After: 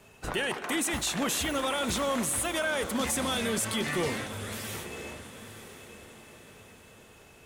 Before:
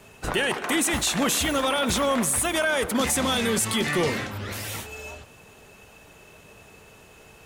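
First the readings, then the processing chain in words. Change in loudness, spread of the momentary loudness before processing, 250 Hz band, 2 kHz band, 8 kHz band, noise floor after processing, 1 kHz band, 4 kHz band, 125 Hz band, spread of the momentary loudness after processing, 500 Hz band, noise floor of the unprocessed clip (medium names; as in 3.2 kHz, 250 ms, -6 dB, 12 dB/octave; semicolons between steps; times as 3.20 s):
-6.0 dB, 11 LU, -5.5 dB, -5.5 dB, -5.5 dB, -54 dBFS, -5.5 dB, -5.5 dB, -5.5 dB, 18 LU, -5.5 dB, -51 dBFS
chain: echo that smears into a reverb 954 ms, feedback 43%, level -12.5 dB; trim -6 dB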